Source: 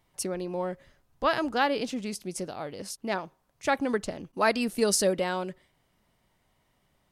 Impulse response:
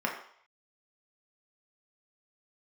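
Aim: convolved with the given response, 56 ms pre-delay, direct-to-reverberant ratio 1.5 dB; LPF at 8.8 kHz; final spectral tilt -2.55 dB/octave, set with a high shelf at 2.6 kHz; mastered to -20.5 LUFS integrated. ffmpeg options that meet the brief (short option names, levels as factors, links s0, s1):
-filter_complex "[0:a]lowpass=8800,highshelf=f=2600:g=9,asplit=2[s0][s1];[1:a]atrim=start_sample=2205,adelay=56[s2];[s1][s2]afir=irnorm=-1:irlink=0,volume=0.316[s3];[s0][s3]amix=inputs=2:normalize=0,volume=1.78"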